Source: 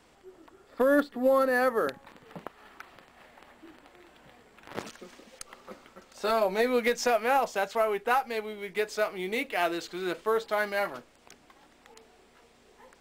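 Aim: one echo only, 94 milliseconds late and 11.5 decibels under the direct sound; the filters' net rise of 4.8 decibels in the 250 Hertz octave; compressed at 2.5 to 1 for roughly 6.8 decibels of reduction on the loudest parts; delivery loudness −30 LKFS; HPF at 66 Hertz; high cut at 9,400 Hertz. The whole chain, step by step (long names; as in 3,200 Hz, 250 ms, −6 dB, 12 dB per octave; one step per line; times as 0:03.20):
high-pass filter 66 Hz
low-pass filter 9,400 Hz
parametric band 250 Hz +5.5 dB
downward compressor 2.5 to 1, threshold −27 dBFS
single-tap delay 94 ms −11.5 dB
level +1 dB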